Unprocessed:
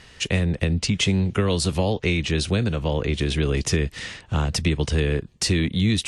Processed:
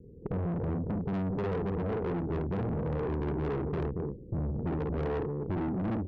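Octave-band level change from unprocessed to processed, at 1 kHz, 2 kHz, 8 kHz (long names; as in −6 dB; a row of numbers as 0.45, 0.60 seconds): −5.0 dB, −18.5 dB, below −40 dB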